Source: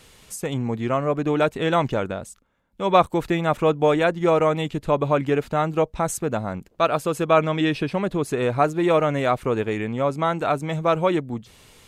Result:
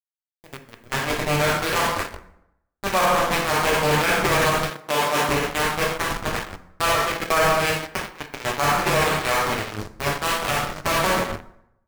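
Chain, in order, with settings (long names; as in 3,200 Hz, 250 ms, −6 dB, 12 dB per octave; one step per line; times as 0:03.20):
hold until the input has moved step −16.5 dBFS
dynamic equaliser 2,100 Hz, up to +6 dB, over −39 dBFS, Q 1.4
harmonic generator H 3 −21 dB, 7 −17 dB, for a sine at −3 dBFS
dense smooth reverb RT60 0.83 s, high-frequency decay 0.65×, DRR −1 dB
in parallel at −8.5 dB: fuzz pedal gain 34 dB, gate −34 dBFS
0:04.70–0:05.29: on the sum: high-pass filter 190 Hz 12 dB per octave
brickwall limiter −10.5 dBFS, peak gain reduction 9.5 dB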